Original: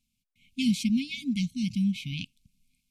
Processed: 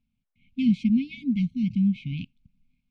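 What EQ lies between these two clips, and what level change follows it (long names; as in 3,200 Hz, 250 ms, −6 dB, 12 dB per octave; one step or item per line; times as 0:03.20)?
low-pass filter 1,600 Hz 12 dB per octave
+4.0 dB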